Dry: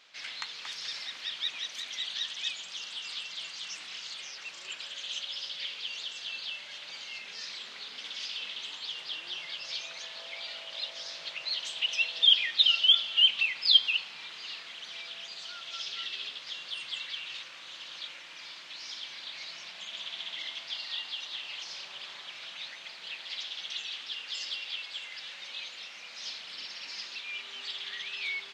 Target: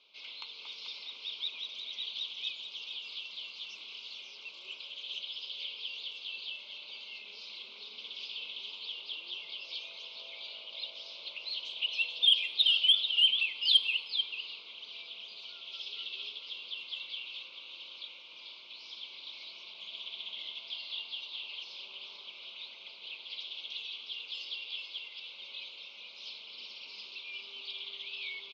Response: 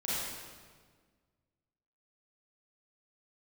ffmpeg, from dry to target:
-filter_complex "[0:a]highpass=190,equalizer=f=210:t=q:w=4:g=7,equalizer=f=410:t=q:w=4:g=7,equalizer=f=750:t=q:w=4:g=-9,equalizer=f=1300:t=q:w=4:g=-9,equalizer=f=2100:t=q:w=4:g=6,lowpass=f=4000:w=0.5412,lowpass=f=4000:w=1.3066,aecho=1:1:440:0.376,acontrast=40,asuperstop=centerf=1800:order=4:qfactor=1.3,lowshelf=f=370:g=-10.5,asplit=2[s0][s1];[1:a]atrim=start_sample=2205[s2];[s1][s2]afir=irnorm=-1:irlink=0,volume=0.0668[s3];[s0][s3]amix=inputs=2:normalize=0,volume=0.422"

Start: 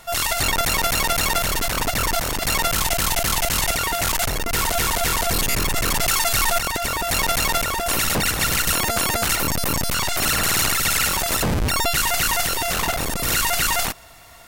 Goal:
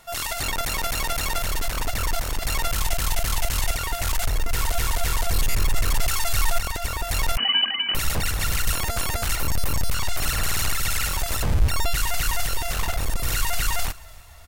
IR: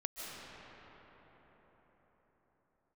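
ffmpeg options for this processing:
-filter_complex "[0:a]asplit=4[s0][s1][s2][s3];[s1]adelay=292,afreqshift=-40,volume=0.0708[s4];[s2]adelay=584,afreqshift=-80,volume=0.0339[s5];[s3]adelay=876,afreqshift=-120,volume=0.0162[s6];[s0][s4][s5][s6]amix=inputs=4:normalize=0,asubboost=boost=4.5:cutoff=98,asettb=1/sr,asplit=3[s7][s8][s9];[s7]atrim=end=7.374[s10];[s8]atrim=start=7.37:end=7.95,asetpts=PTS-STARTPTS,afade=t=in:d=0.004:c=qsin,afade=t=out:st=0.576:d=0.004:c=qsin,lowpass=f=2600:t=q:w=0.5098,lowpass=f=2600:t=q:w=0.6013,lowpass=f=2600:t=q:w=0.9,lowpass=f=2600:t=q:w=2.563,afreqshift=-3000[s11];[s9]atrim=start=7.946[s12];[s10][s11]acrossfade=d=0.004:c1=hsin:c2=qsin[s13];[s13][s12]acrossfade=d=0.004:c1=qsin:c2=hsin,volume=0.473"

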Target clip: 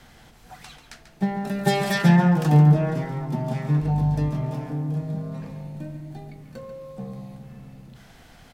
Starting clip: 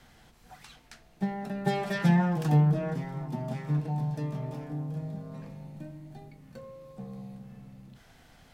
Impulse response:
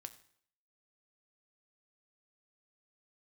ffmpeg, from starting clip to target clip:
-filter_complex "[0:a]asettb=1/sr,asplit=3[s0][s1][s2];[s0]atrim=end=1.474[s3];[s1]atrim=start=1.47:end=2.02,asetpts=PTS-STARTPTS,afade=t=in:d=0.004:c=qsin,afade=t=out:st=0.546:d=0.004:c=qsin,highshelf=f=4000:g=10.5[s4];[s2]atrim=start=2.016[s5];[s3][s4]acrossfade=d=0.004:c1=hsin:c2=qsin[s6];[s6][s5]acrossfade=d=0.004:c1=qsin:c2=hsin,asettb=1/sr,asplit=3[s7][s8][s9];[s7]atrim=end=3.824[s10];[s8]atrim=start=3.82:end=4.29,asetpts=PTS-STARTPTS,afade=t=in:d=0.004:c=qsin,afade=t=out:st=0.466:d=0.004:c=qsin,aeval=exprs='val(0)+0.0112*(sin(2*PI*50*n/s)+sin(2*PI*2*50*n/s)/2+sin(2*PI*3*50*n/s)/3+sin(2*PI*4*50*n/s)/4+sin(2*PI*5*50*n/s)/5)':c=same[s11];[s9]atrim=start=4.286[s12];[s10][s11]acrossfade=d=0.004:c1=hsin:c2=qsin[s13];[s13][s12]acrossfade=d=0.004:c1=qsin:c2=hsin,asplit=2[s14][s15];[s15]adelay=139.9,volume=0.355,highshelf=f=4000:g=-3.15[s16];[s14][s16]amix=inputs=2:normalize=0,volume=2.11"

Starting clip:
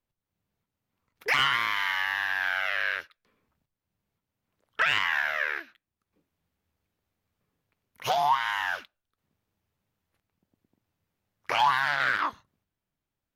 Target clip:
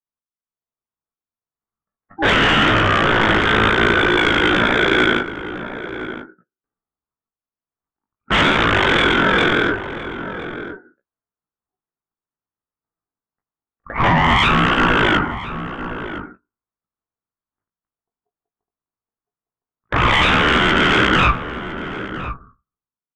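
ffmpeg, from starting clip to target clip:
-filter_complex "[0:a]aemphasis=mode=reproduction:type=75kf,afftdn=nr=27:nf=-49,adynamicequalizer=threshold=0.00891:dfrequency=1400:dqfactor=0.89:tfrequency=1400:tqfactor=0.89:attack=5:release=100:ratio=0.375:range=3:mode=boostabove:tftype=bell,bandpass=f=1100:t=q:w=0.91:csg=0,aresample=11025,aeval=exprs='0.299*sin(PI/2*6.31*val(0)/0.299)':c=same,aresample=44100,aeval=exprs='val(0)*sin(2*PI*980*n/s)':c=same,asoftclip=type=hard:threshold=0.335,acontrast=85,flanger=delay=9.2:depth=1.8:regen=-20:speed=0.33:shape=sinusoidal,asplit=2[s0][s1];[s1]adelay=583.1,volume=0.316,highshelf=f=4000:g=-13.1[s2];[s0][s2]amix=inputs=2:normalize=0,asetrate=25442,aresample=44100"

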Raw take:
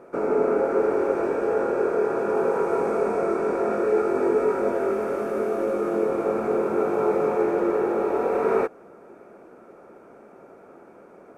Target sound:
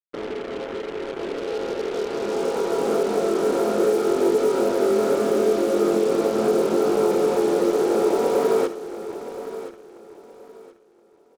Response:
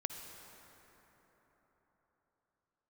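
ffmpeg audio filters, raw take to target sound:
-filter_complex "[0:a]highpass=100,equalizer=f=270:t=o:w=2.9:g=7,alimiter=limit=0.2:level=0:latency=1:release=270,dynaudnorm=f=960:g=5:m=4.22,acrusher=bits=3:mix=0:aa=0.5,aecho=1:1:1023|2046|3069:0.224|0.0582|0.0151[s0];[1:a]atrim=start_sample=2205,atrim=end_sample=3969[s1];[s0][s1]afir=irnorm=-1:irlink=0,volume=0.422"

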